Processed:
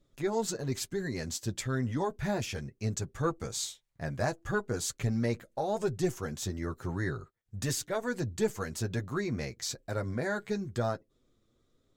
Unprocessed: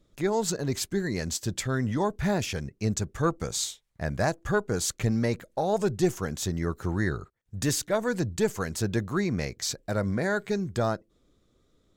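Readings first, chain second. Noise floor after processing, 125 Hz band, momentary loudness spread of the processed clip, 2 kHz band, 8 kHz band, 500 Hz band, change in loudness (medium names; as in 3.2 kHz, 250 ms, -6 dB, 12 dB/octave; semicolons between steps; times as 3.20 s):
-73 dBFS, -4.5 dB, 5 LU, -5.0 dB, -5.0 dB, -5.0 dB, -5.0 dB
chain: flange 1 Hz, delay 7.1 ms, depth 2 ms, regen -26%; trim -1.5 dB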